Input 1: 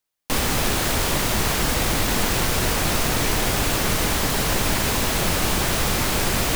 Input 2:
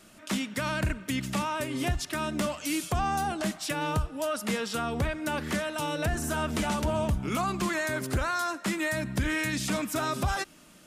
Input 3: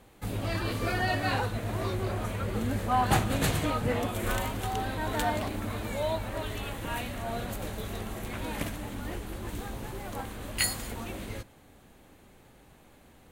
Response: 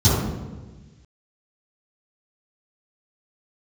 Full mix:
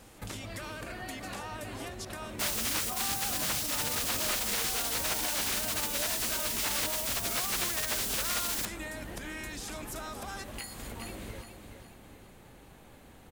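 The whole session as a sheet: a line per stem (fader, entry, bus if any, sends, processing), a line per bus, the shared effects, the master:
-5.0 dB, 2.10 s, no bus, no send, no echo send, spectral gate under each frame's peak -20 dB weak
-5.0 dB, 0.00 s, bus A, no send, no echo send, tone controls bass -12 dB, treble +4 dB
+2.0 dB, 0.00 s, bus A, no send, echo send -10 dB, compression 3:1, threshold -40 dBFS, peak gain reduction 15 dB
bus A: 0.0 dB, compression, threshold -37 dBFS, peak gain reduction 9 dB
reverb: none
echo: feedback delay 414 ms, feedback 40%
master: none

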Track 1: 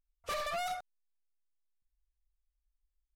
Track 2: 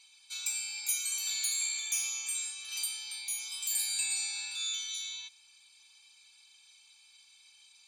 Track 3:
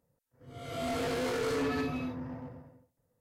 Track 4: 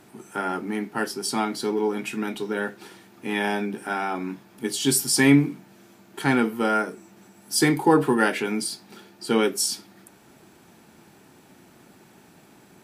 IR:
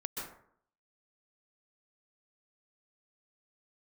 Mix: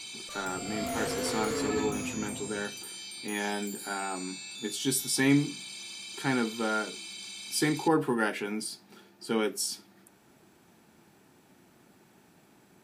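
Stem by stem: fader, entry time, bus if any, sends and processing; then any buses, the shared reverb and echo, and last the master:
-12.5 dB, 0.00 s, no send, none
-15.0 dB, 0.00 s, no send, level flattener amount 100%
-1.0 dB, 0.00 s, no send, none
-7.5 dB, 0.00 s, no send, none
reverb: none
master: none

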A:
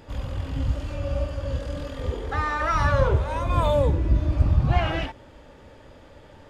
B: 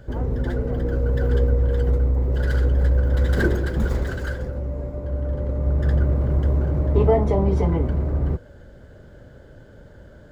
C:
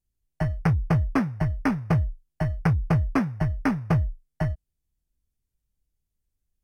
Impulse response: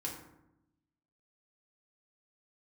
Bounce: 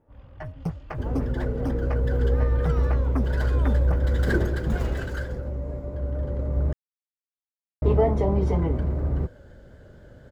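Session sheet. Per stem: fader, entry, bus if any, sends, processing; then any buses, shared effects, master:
-16.5 dB, 0.00 s, no send, level-controlled noise filter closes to 1 kHz, open at -16 dBFS
-3.0 dB, 0.90 s, muted 6.73–7.82 s, no send, vibrato 4.2 Hz 32 cents
-5.0 dB, 0.00 s, no send, lamp-driven phase shifter 5.9 Hz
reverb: none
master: none

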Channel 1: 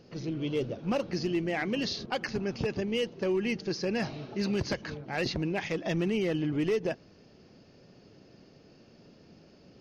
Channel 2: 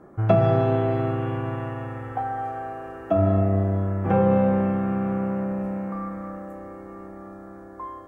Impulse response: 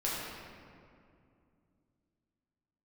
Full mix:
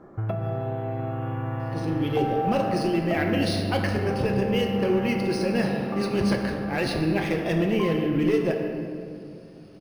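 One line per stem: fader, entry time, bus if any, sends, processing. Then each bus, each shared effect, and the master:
-0.5 dB, 1.60 s, send -3.5 dB, none
-1.5 dB, 0.00 s, send -12 dB, compression 12:1, threshold -27 dBFS, peak gain reduction 15 dB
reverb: on, RT60 2.4 s, pre-delay 6 ms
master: decimation joined by straight lines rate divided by 3×

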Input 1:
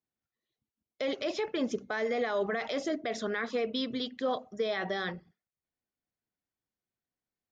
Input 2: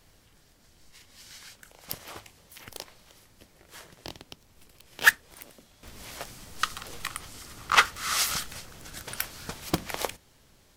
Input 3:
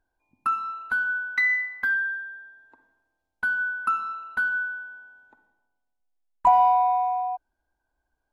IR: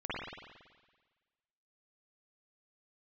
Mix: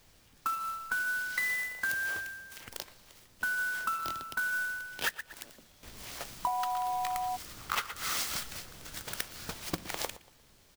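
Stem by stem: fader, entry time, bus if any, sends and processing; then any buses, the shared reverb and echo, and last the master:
mute
-3.5 dB, 0.00 s, bus A, no send, echo send -21 dB, none
-4.0 dB, 0.00 s, bus A, no send, no echo send, none
bus A: 0.0 dB, treble shelf 4.2 kHz +7 dB; compression 10:1, threshold -29 dBFS, peak gain reduction 16 dB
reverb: none
echo: feedback delay 117 ms, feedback 36%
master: sampling jitter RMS 0.023 ms

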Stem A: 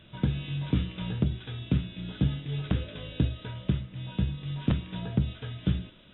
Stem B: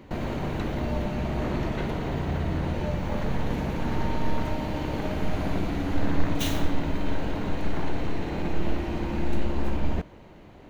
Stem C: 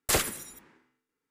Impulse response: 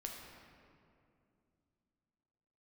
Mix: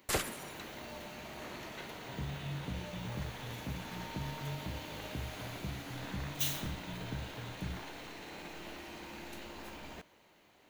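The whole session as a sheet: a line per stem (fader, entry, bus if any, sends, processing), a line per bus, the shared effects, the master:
-9.0 dB, 1.95 s, no send, peak limiter -22.5 dBFS, peak gain reduction 9 dB
-12.0 dB, 0.00 s, no send, tilt EQ +4 dB/octave
-6.0 dB, 0.00 s, no send, treble shelf 5.2 kHz -5.5 dB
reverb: none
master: none

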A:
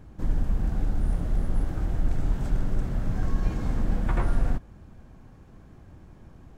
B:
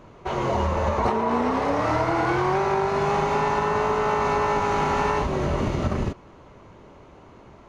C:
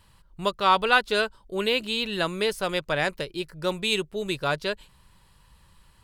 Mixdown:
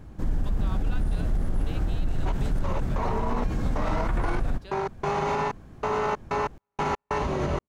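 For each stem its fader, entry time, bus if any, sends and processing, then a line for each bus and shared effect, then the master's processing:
+3.0 dB, 0.00 s, no send, none
-1.5 dB, 2.00 s, no send, trance gate ".x..x.xxx..xx" 94 bpm -60 dB
-17.5 dB, 0.00 s, no send, compression 1.5:1, threshold -29 dBFS, peak gain reduction 5.5 dB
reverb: none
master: peak limiter -17.5 dBFS, peak gain reduction 10 dB

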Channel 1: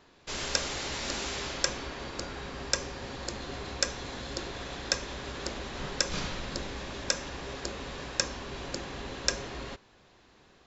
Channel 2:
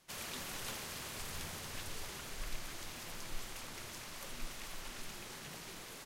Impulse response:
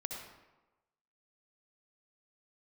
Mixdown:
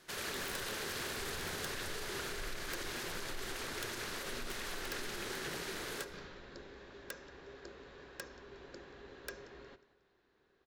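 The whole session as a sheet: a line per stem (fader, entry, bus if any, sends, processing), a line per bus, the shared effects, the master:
-19.5 dB, 0.00 s, send -13.5 dB, echo send -19 dB, treble shelf 4.5 kHz -9 dB
0.0 dB, 0.00 s, send -5.5 dB, no echo send, peak limiter -37 dBFS, peak gain reduction 9.5 dB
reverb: on, RT60 1.1 s, pre-delay 58 ms
echo: feedback delay 181 ms, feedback 37%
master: fifteen-band graphic EQ 400 Hz +10 dB, 1.6 kHz +8 dB, 4 kHz +4 dB; integer overflow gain 29.5 dB

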